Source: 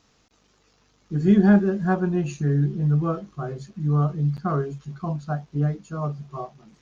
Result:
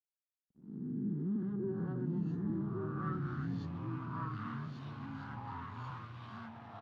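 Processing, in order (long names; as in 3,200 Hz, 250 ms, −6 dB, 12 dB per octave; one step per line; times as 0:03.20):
peak hold with a rise ahead of every peak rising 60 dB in 1.17 s
mains-hum notches 50/100 Hz
leveller curve on the samples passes 3
downward compressor 3 to 1, threshold −26 dBFS, peak gain reduction 12.5 dB
phaser with its sweep stopped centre 2,400 Hz, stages 6
slack as between gear wheels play −45 dBFS
band-pass filter sweep 230 Hz → 2,400 Hz, 0:01.18–0:03.57
single-tap delay 1,139 ms −3.5 dB
delay with pitch and tempo change per echo 568 ms, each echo −3 semitones, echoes 3
level −7 dB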